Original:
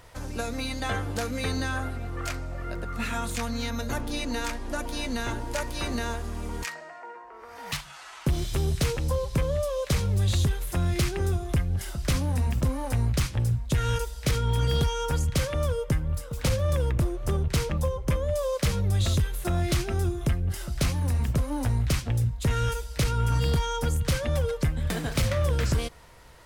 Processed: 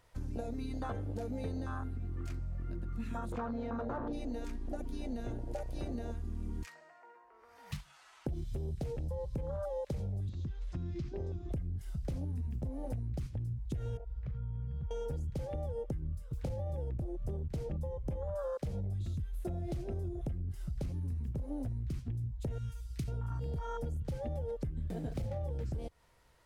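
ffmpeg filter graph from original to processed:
ffmpeg -i in.wav -filter_complex "[0:a]asettb=1/sr,asplit=3[link_01][link_02][link_03];[link_01]atrim=end=3.324[link_04];[link_02]atrim=start=3.32:end=4.13,asetpts=PTS-STARTPTS,afade=type=in:duration=0.004:curve=qsin,afade=type=out:start_time=0.806:duration=0.004:curve=qsin,aemphasis=mode=reproduction:type=75fm,asplit=2[link_05][link_06];[link_06]highpass=frequency=720:poles=1,volume=19dB,asoftclip=type=tanh:threshold=-18dB[link_07];[link_05][link_07]amix=inputs=2:normalize=0,lowpass=frequency=1400:poles=1,volume=-6dB[link_08];[link_03]atrim=start=4.126[link_09];[link_04][link_08]acrossfade=duration=0.004:curve1=hsin:curve2=qsin[link_10];[link_10][link_09]acrossfade=duration=0.004:curve1=qsin:curve2=hsin,asettb=1/sr,asplit=3[link_11][link_12][link_13];[link_11]atrim=end=10.294[link_14];[link_12]atrim=start=10.29:end=11.52,asetpts=PTS-STARTPTS,afade=type=in:duration=0.004:curve=qsin,afade=type=out:start_time=1.226:duration=0.004:curve=qsin,lowpass=frequency=5800:width=0.5412,lowpass=frequency=5800:width=1.3066,acrossover=split=190|1500|4200[link_15][link_16][link_17][link_18];[link_15]acompressor=threshold=-35dB:ratio=3[link_19];[link_16]acompressor=threshold=-37dB:ratio=3[link_20];[link_17]acompressor=threshold=-48dB:ratio=3[link_21];[link_18]acompressor=threshold=-46dB:ratio=3[link_22];[link_19][link_20][link_21][link_22]amix=inputs=4:normalize=0[link_23];[link_13]atrim=start=11.516[link_24];[link_14][link_23]acrossfade=duration=0.004:curve1=hsin:curve2=qsin[link_25];[link_25][link_24]acrossfade=duration=0.004:curve1=qsin:curve2=hsin,asettb=1/sr,asplit=3[link_26][link_27][link_28];[link_26]atrim=end=13.974[link_29];[link_27]atrim=start=13.97:end=14.91,asetpts=PTS-STARTPTS,afade=type=in:duration=0.004:curve=qsin,afade=type=out:start_time=0.936:duration=0.004:curve=qsin,lowpass=1500,acompressor=threshold=-32dB:ratio=12:attack=3.2:release=140:knee=1:detection=peak[link_30];[link_28]atrim=start=14.906[link_31];[link_29][link_30]acrossfade=duration=0.004:curve1=hsin:curve2=qsin[link_32];[link_32][link_31]acrossfade=duration=0.004:curve1=qsin:curve2=hsin,asettb=1/sr,asplit=3[link_33][link_34][link_35];[link_33]atrim=end=22.584[link_36];[link_34]atrim=start=22.58:end=23.08,asetpts=PTS-STARTPTS,afade=type=in:duration=0.004:curve=qsin,afade=type=out:start_time=0.496:duration=0.004:curve=qsin,highpass=63,equalizer=frequency=510:width_type=o:width=2.7:gain=-12[link_37];[link_35]atrim=start=23.076[link_38];[link_36][link_37]acrossfade=duration=0.004:curve1=hsin:curve2=qsin[link_39];[link_39][link_38]acrossfade=duration=0.004:curve1=qsin:curve2=hsin,afwtdn=0.0447,alimiter=limit=-20.5dB:level=0:latency=1,acompressor=threshold=-36dB:ratio=6,volume=1dB" out.wav

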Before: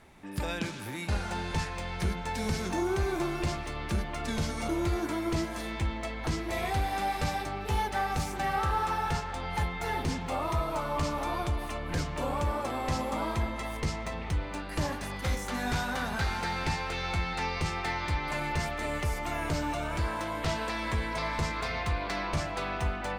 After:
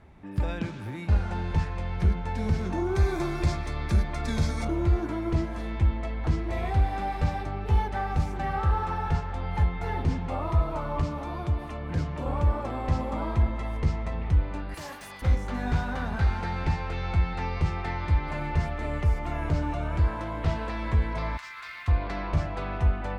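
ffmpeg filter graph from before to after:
ffmpeg -i in.wav -filter_complex "[0:a]asettb=1/sr,asplit=3[link_01][link_02][link_03];[link_01]atrim=end=2.954[link_04];[link_02]atrim=start=2.95:end=4.65,asetpts=PTS-STARTPTS,afade=type=in:duration=0.004:curve=qsin,afade=type=out:start_time=1.696:duration=0.004:curve=qsin,highshelf=frequency=2400:gain=12,bandreject=frequency=2900:width=5.2[link_05];[link_03]atrim=start=4.646[link_06];[link_04][link_05]acrossfade=duration=0.004:curve1=hsin:curve2=qsin[link_07];[link_07][link_06]acrossfade=duration=0.004:curve1=qsin:curve2=hsin,asettb=1/sr,asplit=3[link_08][link_09][link_10];[link_08]atrim=end=11.014[link_11];[link_09]atrim=start=11.01:end=12.26,asetpts=PTS-STARTPTS,afade=type=in:duration=0.004:curve=qsin,afade=type=out:start_time=1.246:duration=0.004:curve=qsin,highpass=81,acrossover=split=330|3000[link_12][link_13][link_14];[link_13]acompressor=threshold=-36dB:ratio=2:attack=3.2:release=140:knee=2.83:detection=peak[link_15];[link_12][link_15][link_14]amix=inputs=3:normalize=0[link_16];[link_10]atrim=start=12.256[link_17];[link_11][link_16]acrossfade=duration=0.004:curve1=hsin:curve2=qsin[link_18];[link_18][link_17]acrossfade=duration=0.004:curve1=qsin:curve2=hsin,asettb=1/sr,asplit=3[link_19][link_20][link_21];[link_19]atrim=end=14.744[link_22];[link_20]atrim=start=14.74:end=15.22,asetpts=PTS-STARTPTS,afade=type=in:duration=0.004:curve=qsin,afade=type=out:start_time=0.476:duration=0.004:curve=qsin,highpass=frequency=860:poles=1,aemphasis=mode=production:type=75fm,asoftclip=type=hard:threshold=-30dB[link_23];[link_21]atrim=start=15.216[link_24];[link_22][link_23]acrossfade=duration=0.004:curve1=hsin:curve2=qsin[link_25];[link_25][link_24]acrossfade=duration=0.004:curve1=qsin:curve2=hsin,asettb=1/sr,asplit=3[link_26][link_27][link_28];[link_26]atrim=end=21.374[link_29];[link_27]atrim=start=21.37:end=21.88,asetpts=PTS-STARTPTS,afade=type=in:duration=0.004:curve=qsin,afade=type=out:start_time=0.506:duration=0.004:curve=qsin,highpass=frequency=1300:width=0.5412,highpass=frequency=1300:width=1.3066,acrusher=bits=3:mode=log:mix=0:aa=0.000001[link_30];[link_28]atrim=start=21.876[link_31];[link_29][link_30]acrossfade=duration=0.004:curve1=hsin:curve2=qsin[link_32];[link_32][link_31]acrossfade=duration=0.004:curve1=qsin:curve2=hsin,lowpass=frequency=1700:poles=1,equalizer=frequency=64:width=0.53:gain=9.5" out.wav

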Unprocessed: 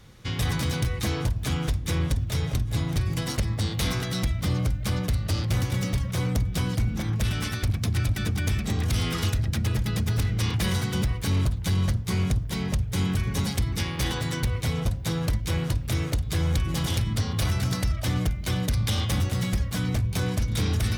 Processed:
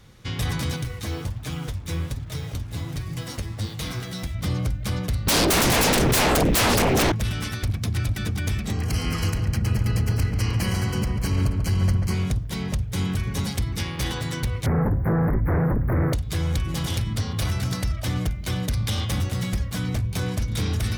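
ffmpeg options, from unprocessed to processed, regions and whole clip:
ffmpeg -i in.wav -filter_complex "[0:a]asettb=1/sr,asplit=3[link_01][link_02][link_03];[link_01]atrim=end=0.764[link_04];[link_02]atrim=start=0.76:end=4.35,asetpts=PTS-STARTPTS,afade=type=in:duration=0.004:curve=qsin,afade=type=out:start_time=3.586:duration=0.004:curve=qsin,acrusher=bits=6:mix=0:aa=0.5,flanger=delay=6.3:depth=5.7:regen=44:speed=1.3:shape=sinusoidal[link_05];[link_03]atrim=start=4.346[link_06];[link_04][link_05]acrossfade=duration=0.004:curve1=hsin:curve2=qsin[link_07];[link_07][link_06]acrossfade=duration=0.004:curve1=qsin:curve2=hsin,asettb=1/sr,asplit=3[link_08][link_09][link_10];[link_08]atrim=end=5.274[link_11];[link_09]atrim=start=5.27:end=7.12,asetpts=PTS-STARTPTS,afade=type=in:duration=0.004:curve=qsin,afade=type=out:start_time=1.846:duration=0.004:curve=qsin,equalizer=frequency=11000:width_type=o:width=1.1:gain=3.5,aeval=exprs='0.158*sin(PI/2*6.31*val(0)/0.158)':channel_layout=same[link_12];[link_10]atrim=start=7.116[link_13];[link_11][link_12]acrossfade=duration=0.004:curve1=hsin:curve2=qsin[link_14];[link_14][link_13]acrossfade=duration=0.004:curve1=qsin:curve2=hsin,asettb=1/sr,asplit=3[link_15][link_16][link_17];[link_15]atrim=end=8.734[link_18];[link_16]atrim=start=8.73:end=12.14,asetpts=PTS-STARTPTS,afade=type=in:duration=0.004:curve=qsin,afade=type=out:start_time=3.406:duration=0.004:curve=qsin,asuperstop=centerf=3600:order=8:qfactor=5,asplit=2[link_19][link_20];[link_20]adelay=140,lowpass=frequency=1800:poles=1,volume=-4dB,asplit=2[link_21][link_22];[link_22]adelay=140,lowpass=frequency=1800:poles=1,volume=0.48,asplit=2[link_23][link_24];[link_24]adelay=140,lowpass=frequency=1800:poles=1,volume=0.48,asplit=2[link_25][link_26];[link_26]adelay=140,lowpass=frequency=1800:poles=1,volume=0.48,asplit=2[link_27][link_28];[link_28]adelay=140,lowpass=frequency=1800:poles=1,volume=0.48,asplit=2[link_29][link_30];[link_30]adelay=140,lowpass=frequency=1800:poles=1,volume=0.48[link_31];[link_19][link_21][link_23][link_25][link_27][link_29][link_31]amix=inputs=7:normalize=0,atrim=end_sample=150381[link_32];[link_17]atrim=start=12.136[link_33];[link_18][link_32]acrossfade=duration=0.004:curve1=hsin:curve2=qsin[link_34];[link_34][link_33]acrossfade=duration=0.004:curve1=qsin:curve2=hsin,asettb=1/sr,asplit=3[link_35][link_36][link_37];[link_35]atrim=end=14.664[link_38];[link_36]atrim=start=14.66:end=16.13,asetpts=PTS-STARTPTS,afade=type=in:duration=0.004:curve=qsin,afade=type=out:start_time=1.466:duration=0.004:curve=qsin,aeval=exprs='0.141*sin(PI/2*2.24*val(0)/0.141)':channel_layout=same,acrossover=split=2500[link_39][link_40];[link_40]acompressor=threshold=-40dB:ratio=4:attack=1:release=60[link_41];[link_39][link_41]amix=inputs=2:normalize=0,asuperstop=centerf=5200:order=12:qfactor=0.53[link_42];[link_37]atrim=start=16.126[link_43];[link_38][link_42]acrossfade=duration=0.004:curve1=hsin:curve2=qsin[link_44];[link_44][link_43]acrossfade=duration=0.004:curve1=qsin:curve2=hsin" out.wav

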